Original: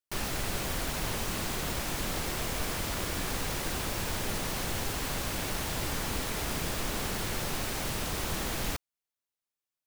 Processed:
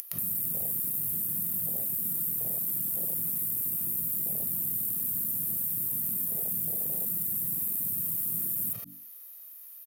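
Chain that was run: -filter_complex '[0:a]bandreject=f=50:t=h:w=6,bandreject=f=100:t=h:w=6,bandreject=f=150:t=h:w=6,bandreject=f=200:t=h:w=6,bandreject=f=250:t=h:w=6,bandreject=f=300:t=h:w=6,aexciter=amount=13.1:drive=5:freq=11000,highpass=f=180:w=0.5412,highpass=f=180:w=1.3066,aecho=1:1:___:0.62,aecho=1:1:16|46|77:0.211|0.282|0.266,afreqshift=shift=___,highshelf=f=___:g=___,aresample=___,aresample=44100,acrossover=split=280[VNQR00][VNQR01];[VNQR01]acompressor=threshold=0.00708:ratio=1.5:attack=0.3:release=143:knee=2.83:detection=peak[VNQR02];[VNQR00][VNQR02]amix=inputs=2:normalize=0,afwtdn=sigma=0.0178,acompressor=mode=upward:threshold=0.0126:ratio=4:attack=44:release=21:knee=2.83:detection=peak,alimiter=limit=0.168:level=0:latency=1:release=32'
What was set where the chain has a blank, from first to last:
1.6, -16, 9700, 6.5, 32000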